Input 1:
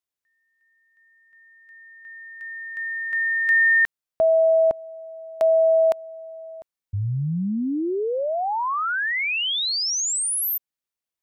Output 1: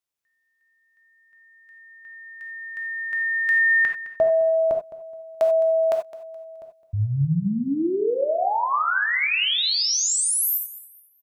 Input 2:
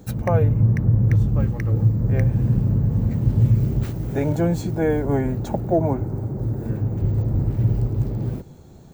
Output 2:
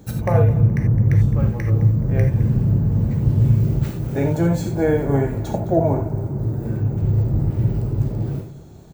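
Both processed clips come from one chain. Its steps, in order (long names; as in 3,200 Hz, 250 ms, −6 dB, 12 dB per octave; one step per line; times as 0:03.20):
repeating echo 212 ms, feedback 29%, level −16.5 dB
reverb whose tail is shaped and stops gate 110 ms flat, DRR 2.5 dB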